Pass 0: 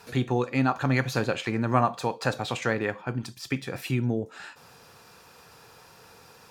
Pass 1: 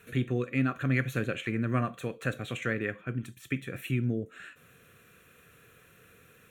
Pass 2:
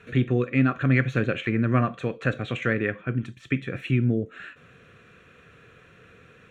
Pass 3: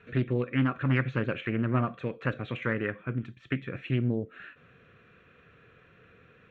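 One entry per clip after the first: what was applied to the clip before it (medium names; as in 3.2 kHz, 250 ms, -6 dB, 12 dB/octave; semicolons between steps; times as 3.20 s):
static phaser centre 2.1 kHz, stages 4; trim -2 dB
distance through air 140 m; trim +7 dB
low-pass 3.5 kHz 12 dB/octave; loudspeaker Doppler distortion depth 0.32 ms; trim -5 dB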